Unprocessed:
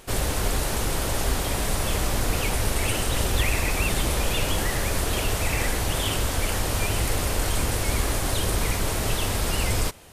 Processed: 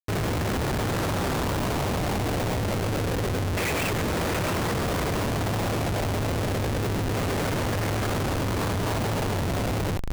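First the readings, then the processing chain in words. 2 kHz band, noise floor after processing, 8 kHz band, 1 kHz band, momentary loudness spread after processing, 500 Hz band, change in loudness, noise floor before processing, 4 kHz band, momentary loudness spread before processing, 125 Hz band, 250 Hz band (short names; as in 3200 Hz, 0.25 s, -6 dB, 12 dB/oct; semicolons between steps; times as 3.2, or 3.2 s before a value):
-2.0 dB, -26 dBFS, -9.0 dB, +1.0 dB, 1 LU, +2.0 dB, -1.5 dB, -27 dBFS, -5.0 dB, 2 LU, +1.0 dB, +4.0 dB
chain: HPF 87 Hz 24 dB/oct; LFO low-pass saw down 0.28 Hz 400–2500 Hz; split-band echo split 440 Hz, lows 0.104 s, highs 0.669 s, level -7 dB; Schmitt trigger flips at -26.5 dBFS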